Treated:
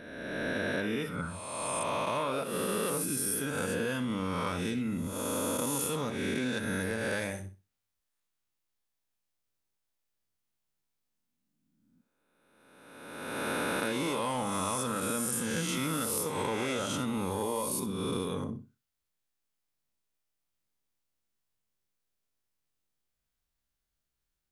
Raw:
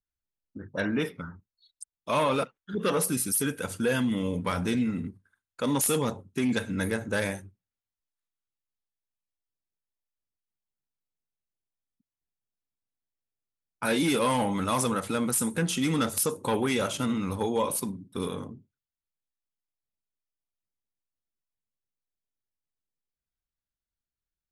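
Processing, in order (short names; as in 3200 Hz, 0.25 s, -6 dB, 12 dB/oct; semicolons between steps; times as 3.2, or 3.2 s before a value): spectral swells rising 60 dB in 1.62 s; flutter echo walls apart 10.8 m, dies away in 0.26 s; compressor 10:1, threshold -33 dBFS, peak gain reduction 15.5 dB; gain +4 dB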